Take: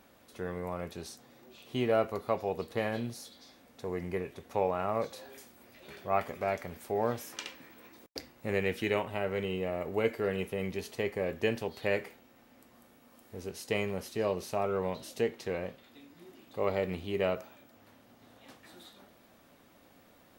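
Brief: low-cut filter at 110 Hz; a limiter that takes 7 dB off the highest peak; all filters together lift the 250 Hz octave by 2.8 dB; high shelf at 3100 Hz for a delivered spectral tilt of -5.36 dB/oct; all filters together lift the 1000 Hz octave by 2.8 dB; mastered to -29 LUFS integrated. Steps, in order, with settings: HPF 110 Hz; bell 250 Hz +4 dB; bell 1000 Hz +4.5 dB; high shelf 3100 Hz -7.5 dB; gain +5 dB; limiter -15 dBFS

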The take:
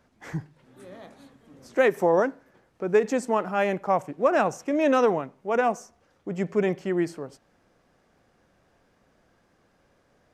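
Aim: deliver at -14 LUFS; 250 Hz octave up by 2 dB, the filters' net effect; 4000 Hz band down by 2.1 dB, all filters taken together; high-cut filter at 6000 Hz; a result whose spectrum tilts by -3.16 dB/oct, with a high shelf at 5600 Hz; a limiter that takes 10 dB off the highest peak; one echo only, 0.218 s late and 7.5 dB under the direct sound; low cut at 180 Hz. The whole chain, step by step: HPF 180 Hz; LPF 6000 Hz; bell 250 Hz +4 dB; bell 4000 Hz -4 dB; high shelf 5600 Hz +4 dB; limiter -18 dBFS; echo 0.218 s -7.5 dB; gain +14.5 dB

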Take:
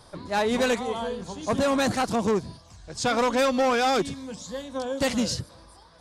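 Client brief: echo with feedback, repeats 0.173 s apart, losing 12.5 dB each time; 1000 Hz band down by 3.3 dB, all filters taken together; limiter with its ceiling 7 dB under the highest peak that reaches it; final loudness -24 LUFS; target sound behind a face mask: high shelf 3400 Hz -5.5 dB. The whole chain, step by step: bell 1000 Hz -4 dB; limiter -24 dBFS; high shelf 3400 Hz -5.5 dB; feedback echo 0.173 s, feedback 24%, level -12.5 dB; gain +8 dB

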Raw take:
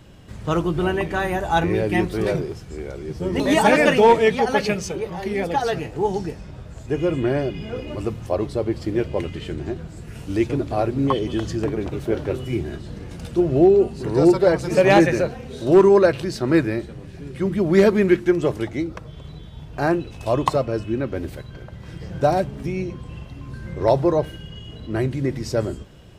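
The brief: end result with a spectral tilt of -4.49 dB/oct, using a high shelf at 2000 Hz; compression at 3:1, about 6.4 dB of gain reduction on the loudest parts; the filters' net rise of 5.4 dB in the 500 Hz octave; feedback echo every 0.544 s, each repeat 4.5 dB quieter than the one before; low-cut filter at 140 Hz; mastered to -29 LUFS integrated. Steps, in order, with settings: HPF 140 Hz; bell 500 Hz +7.5 dB; high shelf 2000 Hz -5.5 dB; compressor 3:1, threshold -13 dBFS; feedback echo 0.544 s, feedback 60%, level -4.5 dB; gain -10 dB

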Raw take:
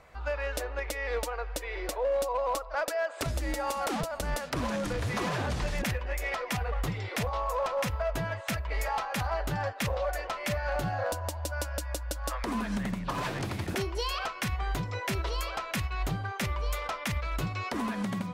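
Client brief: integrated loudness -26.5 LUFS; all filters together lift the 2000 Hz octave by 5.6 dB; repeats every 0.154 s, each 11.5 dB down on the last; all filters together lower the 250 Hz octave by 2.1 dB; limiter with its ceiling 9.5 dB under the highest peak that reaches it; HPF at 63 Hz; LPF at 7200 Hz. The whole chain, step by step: HPF 63 Hz; LPF 7200 Hz; bell 250 Hz -3 dB; bell 2000 Hz +7 dB; limiter -25.5 dBFS; feedback echo 0.154 s, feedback 27%, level -11.5 dB; gain +7.5 dB

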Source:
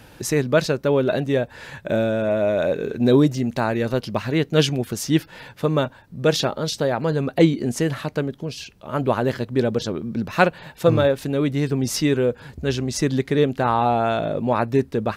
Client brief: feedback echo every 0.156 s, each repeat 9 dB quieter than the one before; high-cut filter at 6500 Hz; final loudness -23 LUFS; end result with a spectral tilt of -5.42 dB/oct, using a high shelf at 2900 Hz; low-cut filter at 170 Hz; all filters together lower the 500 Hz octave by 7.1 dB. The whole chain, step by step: HPF 170 Hz; LPF 6500 Hz; bell 500 Hz -8.5 dB; high shelf 2900 Hz -9 dB; feedback echo 0.156 s, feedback 35%, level -9 dB; gain +3 dB

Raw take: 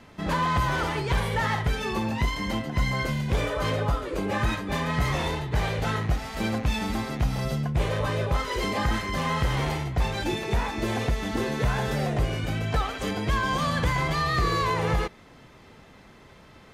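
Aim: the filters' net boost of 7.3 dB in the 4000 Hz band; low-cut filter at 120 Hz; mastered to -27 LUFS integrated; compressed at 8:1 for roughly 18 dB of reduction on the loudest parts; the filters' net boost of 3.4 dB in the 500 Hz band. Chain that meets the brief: HPF 120 Hz; bell 500 Hz +4 dB; bell 4000 Hz +9 dB; compressor 8:1, threshold -40 dBFS; gain +15 dB

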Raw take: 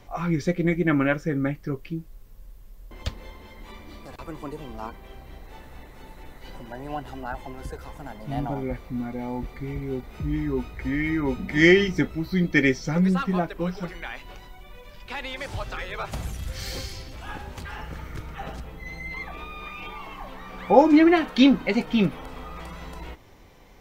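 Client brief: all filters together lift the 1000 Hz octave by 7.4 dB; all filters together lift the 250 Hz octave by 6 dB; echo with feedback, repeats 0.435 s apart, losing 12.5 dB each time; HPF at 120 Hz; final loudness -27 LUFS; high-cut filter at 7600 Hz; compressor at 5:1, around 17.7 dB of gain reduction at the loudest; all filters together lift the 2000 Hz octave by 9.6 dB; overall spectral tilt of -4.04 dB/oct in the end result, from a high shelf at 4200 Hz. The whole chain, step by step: HPF 120 Hz; LPF 7600 Hz; bell 250 Hz +7.5 dB; bell 1000 Hz +7.5 dB; bell 2000 Hz +7.5 dB; high shelf 4200 Hz +6.5 dB; compressor 5:1, threshold -25 dBFS; feedback echo 0.435 s, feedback 24%, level -12.5 dB; gain +3 dB

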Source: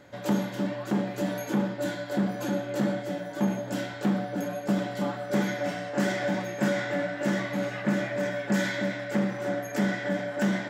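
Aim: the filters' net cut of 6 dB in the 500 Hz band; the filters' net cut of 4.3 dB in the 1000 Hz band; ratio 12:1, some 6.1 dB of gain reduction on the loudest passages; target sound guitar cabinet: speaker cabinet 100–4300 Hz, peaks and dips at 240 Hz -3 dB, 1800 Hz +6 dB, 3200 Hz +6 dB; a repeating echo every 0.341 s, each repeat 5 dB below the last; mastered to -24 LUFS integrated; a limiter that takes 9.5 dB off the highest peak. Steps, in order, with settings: bell 500 Hz -6 dB; bell 1000 Hz -4 dB; compressor 12:1, threshold -28 dBFS; limiter -28 dBFS; speaker cabinet 100–4300 Hz, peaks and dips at 240 Hz -3 dB, 1800 Hz +6 dB, 3200 Hz +6 dB; feedback echo 0.341 s, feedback 56%, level -5 dB; gain +10.5 dB

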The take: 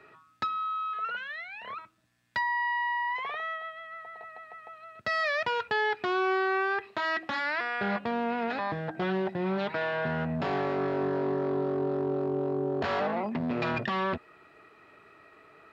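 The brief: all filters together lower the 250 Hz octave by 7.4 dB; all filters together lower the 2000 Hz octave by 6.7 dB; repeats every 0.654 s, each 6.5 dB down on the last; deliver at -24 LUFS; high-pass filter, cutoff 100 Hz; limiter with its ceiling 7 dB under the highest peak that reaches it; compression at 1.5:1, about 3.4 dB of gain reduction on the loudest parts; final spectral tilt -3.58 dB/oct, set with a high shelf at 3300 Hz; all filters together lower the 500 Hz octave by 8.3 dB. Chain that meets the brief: HPF 100 Hz; bell 250 Hz -7 dB; bell 500 Hz -8.5 dB; bell 2000 Hz -5.5 dB; high shelf 3300 Hz -7.5 dB; compressor 1.5:1, threshold -40 dBFS; limiter -33 dBFS; feedback echo 0.654 s, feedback 47%, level -6.5 dB; gain +16.5 dB

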